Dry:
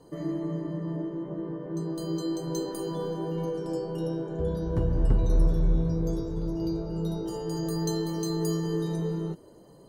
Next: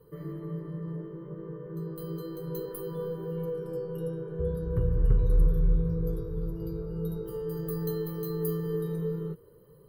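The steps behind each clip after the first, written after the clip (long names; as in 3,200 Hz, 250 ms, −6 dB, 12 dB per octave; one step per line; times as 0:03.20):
drawn EQ curve 150 Hz 0 dB, 290 Hz −16 dB, 460 Hz +3 dB, 690 Hz −21 dB, 1,200 Hz −2 dB, 4,100 Hz −13 dB, 6,800 Hz −25 dB, 13,000 Hz +9 dB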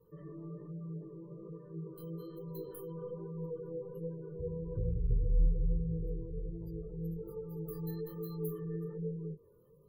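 chorus effect 1.2 Hz, delay 17 ms, depth 7.2 ms
gate on every frequency bin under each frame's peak −30 dB strong
level −5 dB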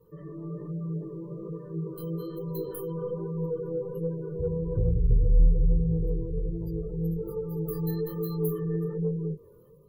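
automatic gain control gain up to 4 dB
in parallel at −6.5 dB: soft clipping −24.5 dBFS, distortion −11 dB
on the sum: level +2.5 dB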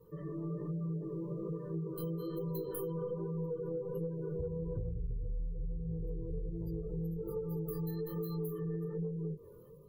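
downward compressor 16 to 1, threshold −34 dBFS, peak gain reduction 20 dB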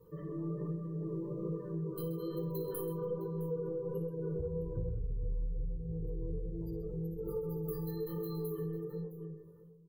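fade-out on the ending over 1.24 s
on a send: multi-tap delay 57/130/661 ms −11/−12.5/−17.5 dB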